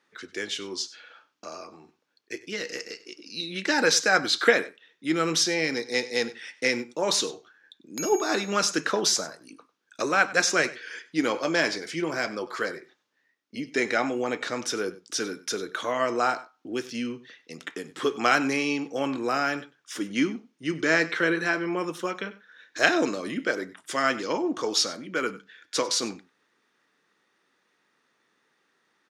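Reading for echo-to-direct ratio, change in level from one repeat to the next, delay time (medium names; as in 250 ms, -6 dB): -18.5 dB, no regular repeats, 97 ms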